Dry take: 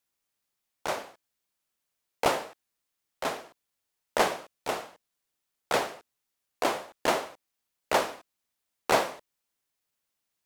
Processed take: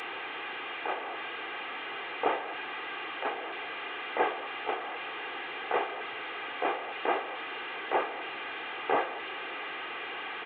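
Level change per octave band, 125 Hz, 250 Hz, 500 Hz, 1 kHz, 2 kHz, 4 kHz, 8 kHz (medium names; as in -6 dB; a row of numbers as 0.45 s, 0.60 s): under -10 dB, -2.5 dB, -3.0 dB, -0.5 dB, +3.0 dB, -1.0 dB, under -35 dB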